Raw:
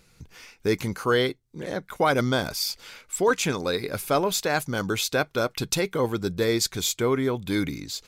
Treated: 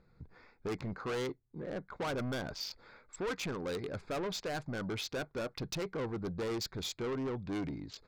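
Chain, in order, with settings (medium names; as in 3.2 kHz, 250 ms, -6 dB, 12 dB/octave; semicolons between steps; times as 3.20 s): local Wiener filter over 15 samples; low-pass 5.7 kHz 24 dB/octave; saturation -28 dBFS, distortion -7 dB; trim -5 dB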